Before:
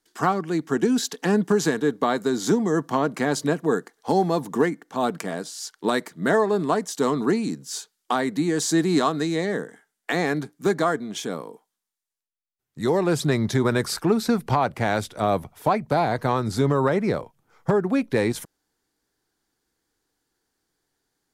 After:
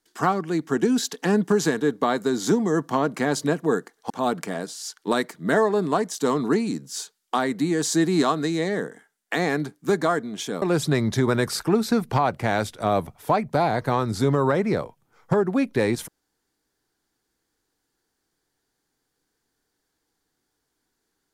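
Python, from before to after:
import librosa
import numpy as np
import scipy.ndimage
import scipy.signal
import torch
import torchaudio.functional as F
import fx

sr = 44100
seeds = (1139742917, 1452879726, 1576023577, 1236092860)

y = fx.edit(x, sr, fx.cut(start_s=4.1, length_s=0.77),
    fx.cut(start_s=11.39, length_s=1.6), tone=tone)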